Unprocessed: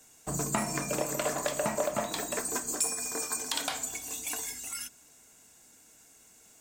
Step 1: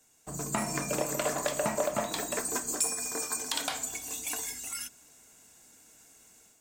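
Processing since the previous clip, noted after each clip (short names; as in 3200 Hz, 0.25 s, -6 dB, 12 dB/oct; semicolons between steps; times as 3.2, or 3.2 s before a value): AGC gain up to 8 dB; gain -7.5 dB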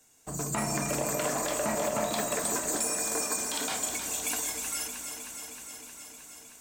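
limiter -22.5 dBFS, peak gain reduction 10 dB; on a send: echo with dull and thin repeats by turns 0.156 s, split 1100 Hz, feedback 86%, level -6.5 dB; on the sum: gain +2.5 dB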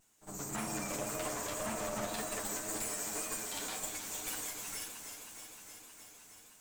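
minimum comb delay 9.6 ms; vibrato 1.9 Hz 44 cents; pre-echo 56 ms -13 dB; gain -6.5 dB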